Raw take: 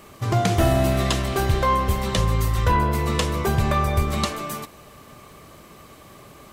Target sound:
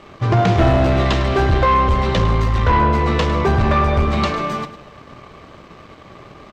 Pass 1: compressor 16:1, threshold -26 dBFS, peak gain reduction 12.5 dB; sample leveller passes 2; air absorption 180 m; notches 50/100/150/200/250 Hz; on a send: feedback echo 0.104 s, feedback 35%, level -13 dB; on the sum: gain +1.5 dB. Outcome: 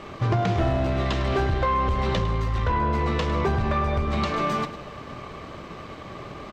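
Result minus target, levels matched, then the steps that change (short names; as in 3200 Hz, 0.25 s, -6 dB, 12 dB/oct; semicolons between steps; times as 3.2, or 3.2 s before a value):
compressor: peak gain reduction +12.5 dB
remove: compressor 16:1, threshold -26 dBFS, peak gain reduction 12.5 dB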